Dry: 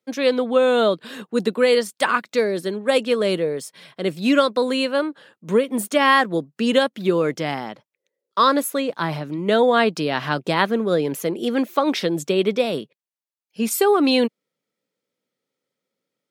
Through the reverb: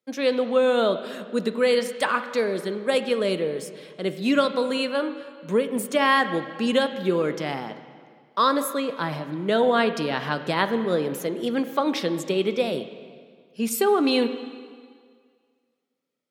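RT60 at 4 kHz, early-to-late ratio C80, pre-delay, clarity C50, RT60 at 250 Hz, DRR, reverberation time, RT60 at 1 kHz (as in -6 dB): 1.8 s, 12.0 dB, 6 ms, 11.0 dB, 1.8 s, 9.5 dB, 1.9 s, 1.9 s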